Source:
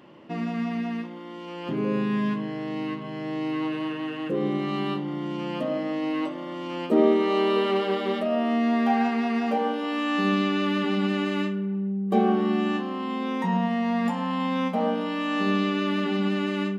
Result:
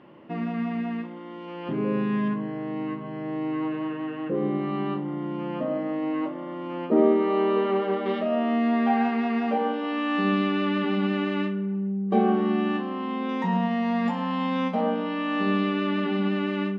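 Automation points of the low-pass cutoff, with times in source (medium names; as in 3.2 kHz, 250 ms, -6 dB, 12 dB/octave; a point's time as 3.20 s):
2.6 kHz
from 2.28 s 1.8 kHz
from 8.06 s 3.1 kHz
from 13.29 s 4.9 kHz
from 14.81 s 3.1 kHz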